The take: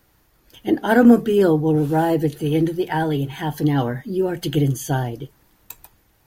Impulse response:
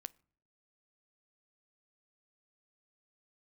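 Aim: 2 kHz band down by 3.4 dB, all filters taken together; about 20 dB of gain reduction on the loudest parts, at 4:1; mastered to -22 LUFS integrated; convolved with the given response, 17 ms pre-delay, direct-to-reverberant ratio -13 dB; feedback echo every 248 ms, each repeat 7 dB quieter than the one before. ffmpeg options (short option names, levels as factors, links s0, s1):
-filter_complex "[0:a]equalizer=f=2000:t=o:g=-5,acompressor=threshold=0.0251:ratio=4,aecho=1:1:248|496|744|992|1240:0.447|0.201|0.0905|0.0407|0.0183,asplit=2[s0][s1];[1:a]atrim=start_sample=2205,adelay=17[s2];[s1][s2]afir=irnorm=-1:irlink=0,volume=7.5[s3];[s0][s3]amix=inputs=2:normalize=0,volume=0.794"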